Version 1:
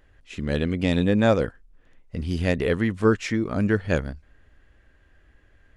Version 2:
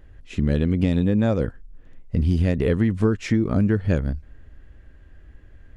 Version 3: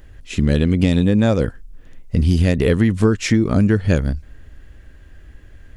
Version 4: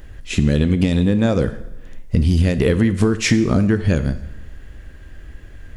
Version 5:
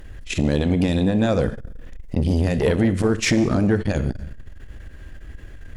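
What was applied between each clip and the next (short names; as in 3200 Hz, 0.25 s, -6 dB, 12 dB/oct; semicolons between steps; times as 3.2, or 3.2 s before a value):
low shelf 400 Hz +11.5 dB; compressor 10:1, threshold -15 dBFS, peak gain reduction 10 dB
high shelf 3400 Hz +11 dB; gain +4.5 dB
compressor, threshold -16 dBFS, peak gain reduction 7.5 dB; plate-style reverb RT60 0.9 s, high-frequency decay 0.9×, DRR 11 dB; gain +4.5 dB
sine folder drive 3 dB, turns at -2 dBFS; core saturation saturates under 240 Hz; gain -6 dB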